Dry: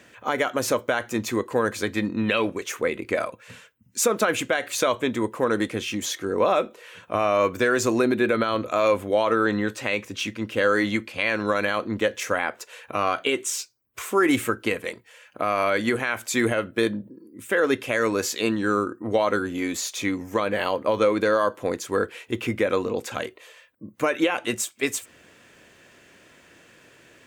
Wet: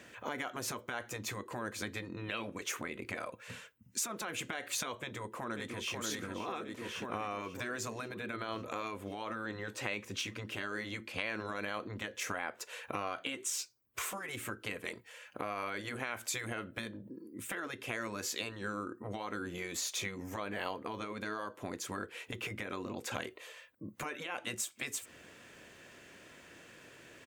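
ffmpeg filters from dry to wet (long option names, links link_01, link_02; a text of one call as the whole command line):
ffmpeg -i in.wav -filter_complex "[0:a]asplit=2[link_01][link_02];[link_02]afade=type=in:start_time=4.99:duration=0.01,afade=type=out:start_time=5.96:duration=0.01,aecho=0:1:540|1080|1620|2160|2700|3240|3780|4320|4860:0.446684|0.290344|0.188724|0.12267|0.0797358|0.0518283|0.0336884|0.0218974|0.0142333[link_03];[link_01][link_03]amix=inputs=2:normalize=0,acompressor=threshold=-30dB:ratio=6,afftfilt=real='re*lt(hypot(re,im),0.126)':imag='im*lt(hypot(re,im),0.126)':win_size=1024:overlap=0.75,volume=-2.5dB" out.wav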